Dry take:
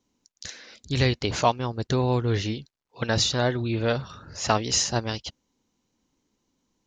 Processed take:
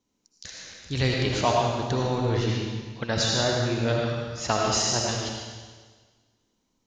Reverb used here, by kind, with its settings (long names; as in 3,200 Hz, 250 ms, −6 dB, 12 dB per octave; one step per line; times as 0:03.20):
comb and all-pass reverb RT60 1.5 s, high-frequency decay 1×, pre-delay 40 ms, DRR −1.5 dB
level −3.5 dB